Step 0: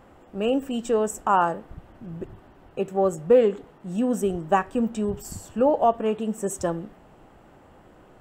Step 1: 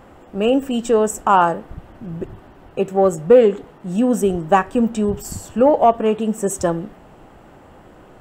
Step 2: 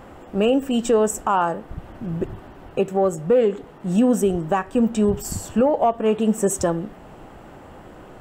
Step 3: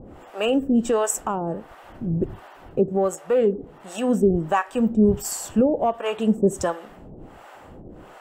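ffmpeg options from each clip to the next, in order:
-af "acontrast=26,volume=2dB"
-af "alimiter=limit=-12.5dB:level=0:latency=1:release=446,volume=2.5dB"
-filter_complex "[0:a]acrossover=split=550[a][b];[a]aeval=exprs='val(0)*(1-1/2+1/2*cos(2*PI*1.4*n/s))':c=same[c];[b]aeval=exprs='val(0)*(1-1/2-1/2*cos(2*PI*1.4*n/s))':c=same[d];[c][d]amix=inputs=2:normalize=0,volume=3.5dB"

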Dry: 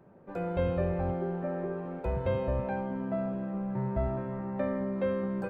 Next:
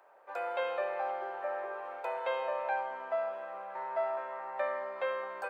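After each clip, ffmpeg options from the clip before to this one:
-af "highpass=f=680:w=0.5412,highpass=f=680:w=1.3066,volume=5.5dB"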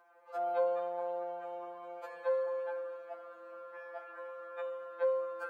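-af "afftfilt=real='re*2.83*eq(mod(b,8),0)':imag='im*2.83*eq(mod(b,8),0)':win_size=2048:overlap=0.75"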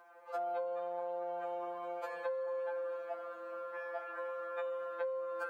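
-af "acompressor=threshold=-40dB:ratio=10,volume=5dB"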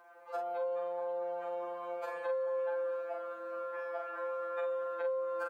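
-filter_complex "[0:a]asplit=2[a][b];[b]adelay=42,volume=-5dB[c];[a][c]amix=inputs=2:normalize=0"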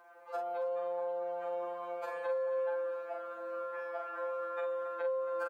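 -af "aecho=1:1:276:0.178"

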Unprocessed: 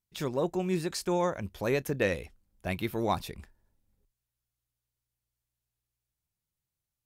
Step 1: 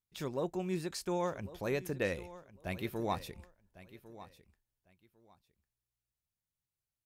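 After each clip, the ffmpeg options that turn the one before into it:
-af "aecho=1:1:1101|2202:0.15|0.0314,volume=-6dB"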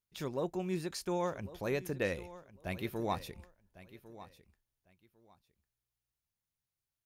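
-af "bandreject=f=7.8k:w=14"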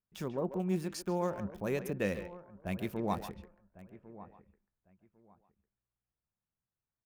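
-filter_complex "[0:a]equalizer=f=200:t=o:w=0.33:g=8,equalizer=f=2k:t=o:w=0.33:g=-3,equalizer=f=4k:t=o:w=0.33:g=-6,acrossover=split=610|2100[a][b][c];[c]aeval=exprs='val(0)*gte(abs(val(0)),0.00251)':c=same[d];[a][b][d]amix=inputs=3:normalize=0,asplit=2[e][f];[f]adelay=140,highpass=300,lowpass=3.4k,asoftclip=type=hard:threshold=-27.5dB,volume=-10dB[g];[e][g]amix=inputs=2:normalize=0"

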